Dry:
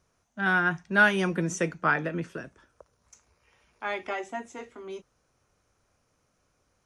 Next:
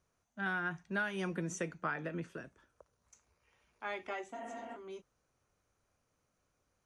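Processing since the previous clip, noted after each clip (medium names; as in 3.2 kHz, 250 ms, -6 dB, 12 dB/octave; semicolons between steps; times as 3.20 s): spectral replace 4.37–4.73 s, 230–3300 Hz before; compression 6:1, threshold -24 dBFS, peak gain reduction 9.5 dB; band-stop 5.3 kHz, Q 14; trim -8 dB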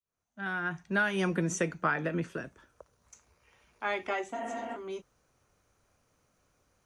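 fade-in on the opening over 1.09 s; trim +8 dB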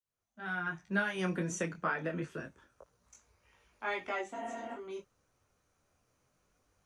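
detune thickener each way 10 cents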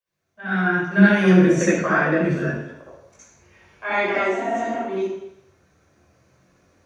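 reverberation RT60 0.80 s, pre-delay 60 ms, DRR -7.5 dB; trim -1 dB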